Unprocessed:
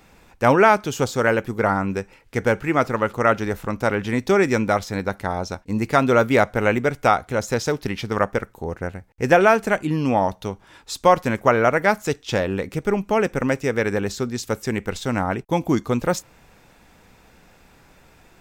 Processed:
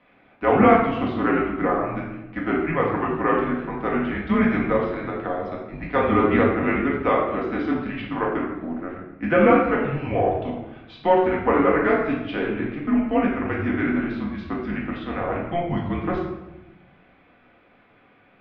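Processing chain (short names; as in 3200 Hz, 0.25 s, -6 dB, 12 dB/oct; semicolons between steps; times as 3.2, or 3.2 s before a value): mistuned SSB -170 Hz 320–3400 Hz; shoebox room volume 370 m³, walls mixed, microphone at 1.9 m; gain -6.5 dB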